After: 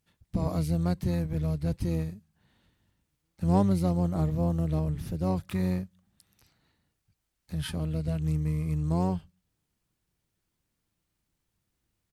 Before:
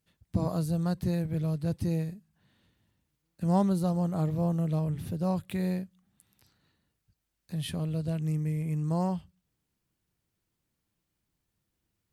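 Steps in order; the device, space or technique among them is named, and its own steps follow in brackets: octave pedal (harmony voices -12 st -5 dB)

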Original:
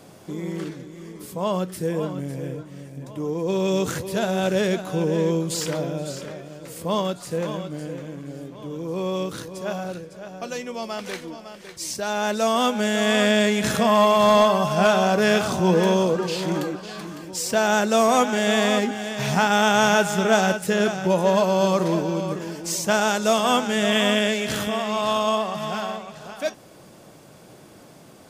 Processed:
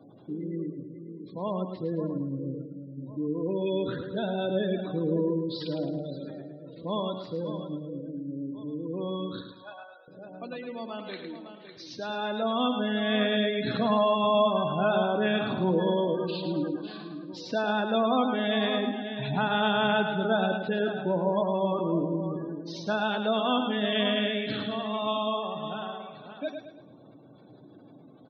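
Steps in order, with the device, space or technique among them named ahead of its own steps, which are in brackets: guitar cabinet (cabinet simulation 110–4500 Hz, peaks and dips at 120 Hz +7 dB, 280 Hz +10 dB, 3.9 kHz +8 dB); spectral gate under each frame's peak -20 dB strong; 9.41–10.08 s: high-pass 820 Hz 24 dB/octave; feedback delay 108 ms, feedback 40%, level -7 dB; trim -8 dB

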